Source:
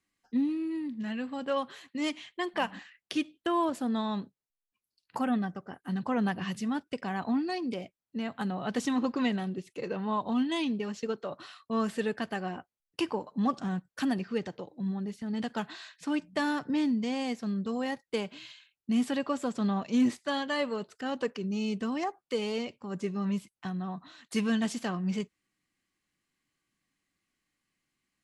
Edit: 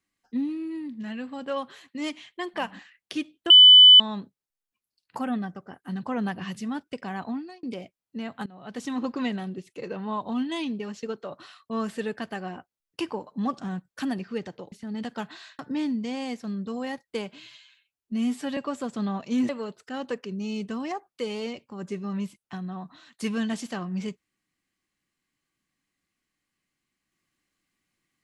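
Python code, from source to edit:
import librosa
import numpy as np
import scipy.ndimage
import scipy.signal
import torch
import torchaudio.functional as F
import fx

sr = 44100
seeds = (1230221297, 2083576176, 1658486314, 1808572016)

y = fx.edit(x, sr, fx.bleep(start_s=3.5, length_s=0.5, hz=3000.0, db=-7.5),
    fx.fade_out_span(start_s=7.21, length_s=0.42),
    fx.fade_in_from(start_s=8.46, length_s=0.59, floor_db=-20.5),
    fx.cut(start_s=14.72, length_s=0.39),
    fx.cut(start_s=15.98, length_s=0.6),
    fx.stretch_span(start_s=18.45, length_s=0.74, factor=1.5),
    fx.cut(start_s=20.11, length_s=0.5), tone=tone)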